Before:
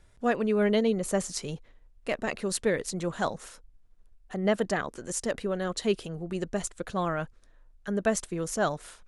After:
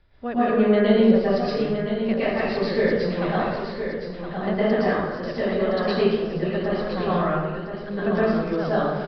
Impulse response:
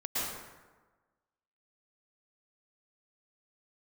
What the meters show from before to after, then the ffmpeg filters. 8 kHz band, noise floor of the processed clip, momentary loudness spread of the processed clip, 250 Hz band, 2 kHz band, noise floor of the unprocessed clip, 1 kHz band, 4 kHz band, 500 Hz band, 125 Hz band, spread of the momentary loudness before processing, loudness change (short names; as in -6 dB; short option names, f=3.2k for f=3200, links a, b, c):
under -25 dB, -33 dBFS, 11 LU, +9.0 dB, +5.5 dB, -58 dBFS, +7.5 dB, +4.0 dB, +8.0 dB, +8.0 dB, 11 LU, +7.0 dB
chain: -filter_complex "[0:a]acrossover=split=470[a][b];[b]acompressor=threshold=-29dB:ratio=6[c];[a][c]amix=inputs=2:normalize=0,aecho=1:1:1016|2032|3048:0.398|0.0717|0.0129[d];[1:a]atrim=start_sample=2205[e];[d][e]afir=irnorm=-1:irlink=0,aresample=11025,aresample=44100,volume=1.5dB"